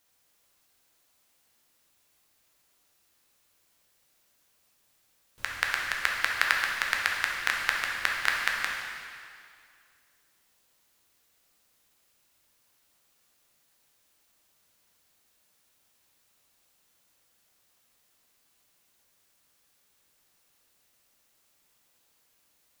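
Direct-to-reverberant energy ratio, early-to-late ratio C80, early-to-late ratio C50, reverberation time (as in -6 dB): -1.5 dB, 3.0 dB, 1.0 dB, 2.2 s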